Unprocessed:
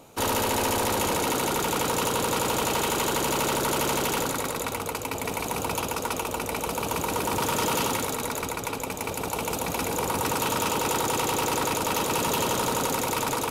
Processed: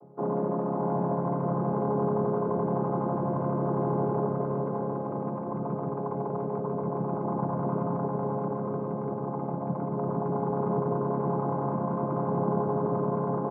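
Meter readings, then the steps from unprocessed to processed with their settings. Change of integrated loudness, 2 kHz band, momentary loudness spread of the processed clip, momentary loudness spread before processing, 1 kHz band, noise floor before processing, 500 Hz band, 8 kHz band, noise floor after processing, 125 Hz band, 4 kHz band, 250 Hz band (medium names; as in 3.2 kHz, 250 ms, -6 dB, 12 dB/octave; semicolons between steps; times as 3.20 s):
-3.0 dB, -21.0 dB, 5 LU, 5 LU, -5.0 dB, -33 dBFS, +0.5 dB, under -40 dB, -33 dBFS, +5.0 dB, under -40 dB, +2.5 dB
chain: vocoder on a held chord major triad, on C#3; low-pass 1 kHz 24 dB/octave; bouncing-ball echo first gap 600 ms, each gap 0.7×, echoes 5; trim -1 dB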